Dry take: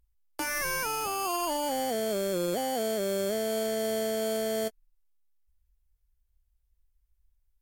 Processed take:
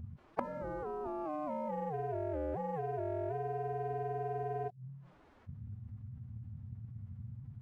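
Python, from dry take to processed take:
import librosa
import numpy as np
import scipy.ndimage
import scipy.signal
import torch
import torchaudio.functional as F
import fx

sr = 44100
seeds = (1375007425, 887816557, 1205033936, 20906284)

y = fx.highpass(x, sr, hz=77.0, slope=6)
y = fx.env_lowpass_down(y, sr, base_hz=740.0, full_db=-30.5)
y = scipy.signal.sosfilt(scipy.signal.butter(2, 1100.0, 'lowpass', fs=sr, output='sos'), y)
y = fx.low_shelf(y, sr, hz=120.0, db=9.0)
y = fx.leveller(y, sr, passes=1)
y = y * np.sin(2.0 * np.pi * 120.0 * np.arange(len(y)) / sr)
y = fx.pitch_keep_formants(y, sr, semitones=4.5)
y = fx.gate_flip(y, sr, shuts_db=-36.0, range_db=-26)
y = fx.env_flatten(y, sr, amount_pct=50)
y = F.gain(torch.from_numpy(y), 15.5).numpy()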